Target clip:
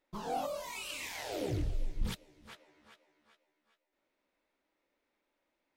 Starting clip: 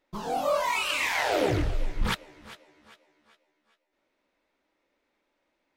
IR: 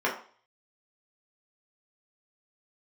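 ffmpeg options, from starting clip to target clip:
-filter_complex "[0:a]asplit=3[s0][s1][s2];[s0]afade=t=out:st=0.45:d=0.02[s3];[s1]equalizer=f=1300:w=0.53:g=-14,afade=t=in:st=0.45:d=0.02,afade=t=out:st=2.47:d=0.02[s4];[s2]afade=t=in:st=2.47:d=0.02[s5];[s3][s4][s5]amix=inputs=3:normalize=0,volume=0.501"

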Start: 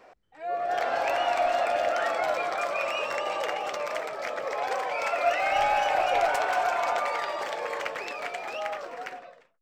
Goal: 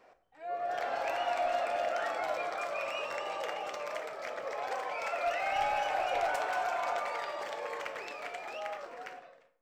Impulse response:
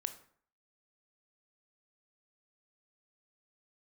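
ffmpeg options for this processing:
-filter_complex "[0:a]volume=6.68,asoftclip=hard,volume=0.15[s0];[1:a]atrim=start_sample=2205[s1];[s0][s1]afir=irnorm=-1:irlink=0,volume=0.501"

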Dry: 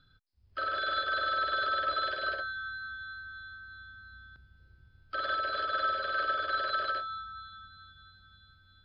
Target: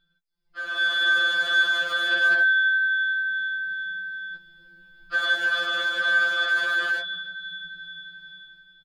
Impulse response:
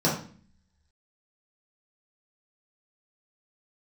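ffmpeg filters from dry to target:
-filter_complex "[0:a]alimiter=level_in=1.41:limit=0.0631:level=0:latency=1:release=10,volume=0.708,asplit=2[s0][s1];[s1]aecho=0:1:306:0.075[s2];[s0][s2]amix=inputs=2:normalize=0,volume=29.9,asoftclip=hard,volume=0.0335,dynaudnorm=f=140:g=11:m=6.31,afftfilt=real='re*2.83*eq(mod(b,8),0)':imag='im*2.83*eq(mod(b,8),0)':win_size=2048:overlap=0.75,volume=0.668"

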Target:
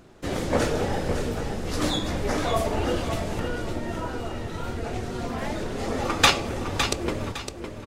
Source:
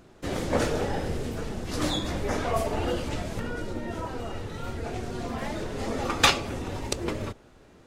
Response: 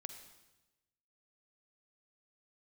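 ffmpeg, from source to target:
-af "aecho=1:1:559|1118|1677|2236:0.398|0.119|0.0358|0.0107,volume=1.26"

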